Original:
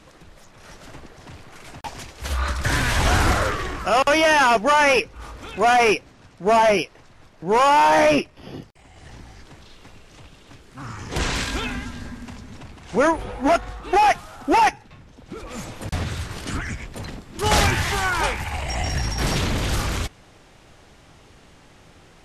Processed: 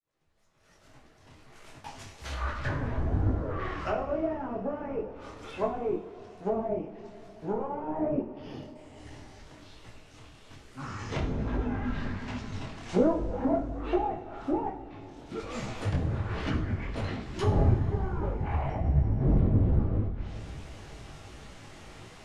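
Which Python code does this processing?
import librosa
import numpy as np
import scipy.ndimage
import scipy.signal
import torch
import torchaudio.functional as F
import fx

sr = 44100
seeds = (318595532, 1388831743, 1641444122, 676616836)

y = fx.fade_in_head(x, sr, length_s=7.24)
y = fx.rider(y, sr, range_db=4, speed_s=2.0)
y = fx.env_lowpass_down(y, sr, base_hz=370.0, full_db=-19.5)
y = fx.rev_double_slope(y, sr, seeds[0], early_s=0.46, late_s=4.4, knee_db=-18, drr_db=2.0)
y = fx.detune_double(y, sr, cents=42)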